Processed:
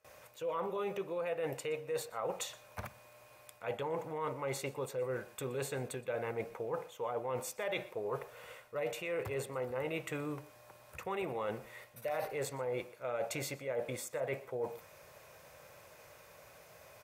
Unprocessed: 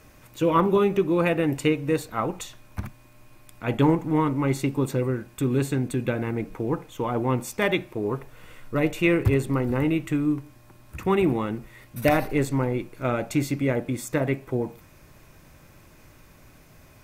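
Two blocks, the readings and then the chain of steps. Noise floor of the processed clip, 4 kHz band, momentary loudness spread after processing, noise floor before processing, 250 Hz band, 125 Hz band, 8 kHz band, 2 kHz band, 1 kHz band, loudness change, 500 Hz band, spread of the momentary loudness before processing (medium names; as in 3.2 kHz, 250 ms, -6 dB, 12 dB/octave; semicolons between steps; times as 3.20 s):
-59 dBFS, -9.5 dB, 19 LU, -53 dBFS, -22.5 dB, -20.0 dB, -6.0 dB, -12.5 dB, -12.0 dB, -14.0 dB, -10.5 dB, 10 LU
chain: gate with hold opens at -44 dBFS; peak limiter -16 dBFS, peak gain reduction 9 dB; resonant low shelf 390 Hz -9 dB, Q 3; reverse; compression 6:1, threshold -32 dBFS, peak gain reduction 13.5 dB; reverse; high-pass 77 Hz; on a send: delay 121 ms -21.5 dB; on the sum: trim -2.5 dB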